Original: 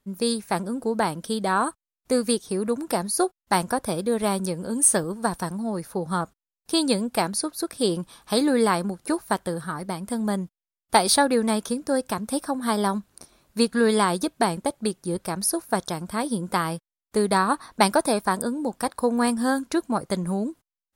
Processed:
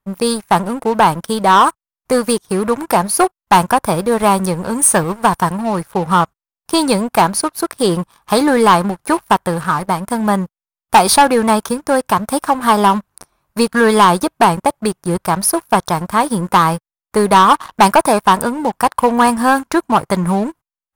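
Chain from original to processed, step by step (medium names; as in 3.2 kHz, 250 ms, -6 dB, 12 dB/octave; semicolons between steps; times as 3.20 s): graphic EQ 125/250/500/1000/4000/8000 Hz +3/-6/-4/+7/-6/-5 dB; waveshaping leveller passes 3; trim +1.5 dB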